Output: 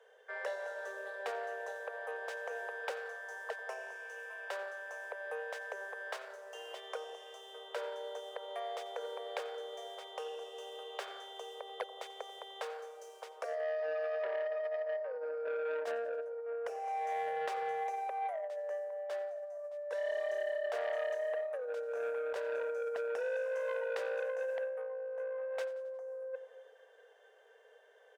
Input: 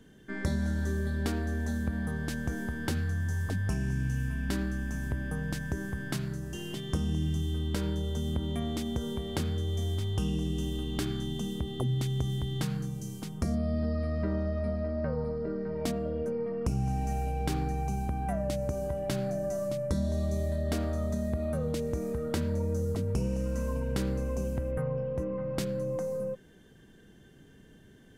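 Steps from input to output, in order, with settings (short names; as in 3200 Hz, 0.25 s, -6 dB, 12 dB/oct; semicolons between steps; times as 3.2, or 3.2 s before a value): median filter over 3 samples; steep high-pass 460 Hz 96 dB/oct; tilt -4 dB/oct; notch 4300 Hz, Q 19; reverb RT60 1.2 s, pre-delay 0.113 s, DRR 19.5 dB; negative-ratio compressor -35 dBFS, ratio -0.5; bell 4400 Hz -2.5 dB 2 oct; feedback echo 89 ms, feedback 53%, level -19 dB; core saturation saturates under 1800 Hz; gain +1 dB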